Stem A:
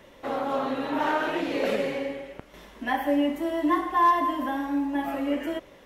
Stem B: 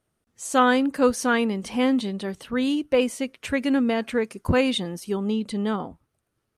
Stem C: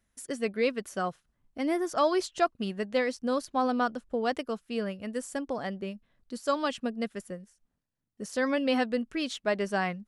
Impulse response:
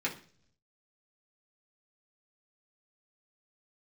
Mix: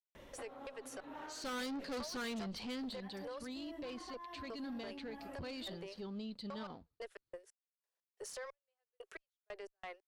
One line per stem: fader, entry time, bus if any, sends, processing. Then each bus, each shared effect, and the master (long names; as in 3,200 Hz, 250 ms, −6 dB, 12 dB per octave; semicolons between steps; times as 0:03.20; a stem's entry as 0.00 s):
−2.0 dB, 0.15 s, bus A, no send, downward compressor 2.5 to 1, threshold −39 dBFS, peak gain reduction 14.5 dB; automatic ducking −8 dB, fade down 0.80 s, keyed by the third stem
0:02.58 −8 dB → 0:03.03 −20 dB, 0.90 s, no bus, no send, leveller curve on the samples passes 1; low-pass with resonance 4,400 Hz, resonance Q 6.5
+0.5 dB, 0.00 s, bus A, no send, Butterworth high-pass 370 Hz 96 dB per octave; gate pattern "..x.xx...x..x.x" 90 BPM −60 dB
bus A: 0.0 dB, downward compressor 4 to 1, threshold −37 dBFS, peak gain reduction 15 dB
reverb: not used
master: low-shelf EQ 93 Hz +8.5 dB; tube saturation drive 31 dB, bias 0.4; brickwall limiter −38 dBFS, peak gain reduction 9.5 dB